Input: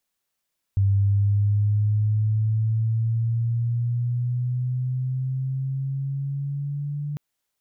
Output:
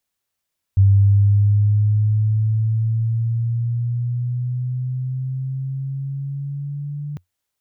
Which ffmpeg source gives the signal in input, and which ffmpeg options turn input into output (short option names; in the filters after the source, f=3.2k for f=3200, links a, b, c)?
-f lavfi -i "aevalsrc='pow(10,(-16-10*t/6.4)/20)*sin(2*PI*98.1*6.4/(7*log(2)/12)*(exp(7*log(2)/12*t/6.4)-1))':d=6.4:s=44100"
-af "equalizer=f=90:t=o:w=0.42:g=10"